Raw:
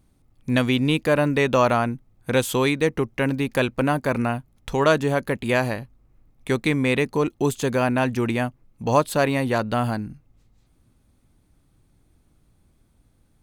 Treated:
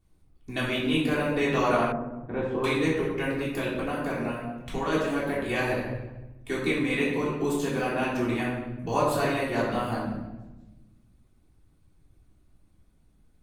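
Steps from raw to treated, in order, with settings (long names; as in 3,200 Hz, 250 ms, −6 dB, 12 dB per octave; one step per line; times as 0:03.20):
flanger 0.34 Hz, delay 1.9 ms, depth 3 ms, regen −57%
0:03.39–0:04.92: downward compressor, threshold −24 dBFS, peak gain reduction 6 dB
convolution reverb RT60 1.1 s, pre-delay 3 ms, DRR −7.5 dB
harmonic and percussive parts rebalanced harmonic −6 dB
0:01.92–0:02.64: low-pass filter 1,100 Hz 12 dB per octave
level −5 dB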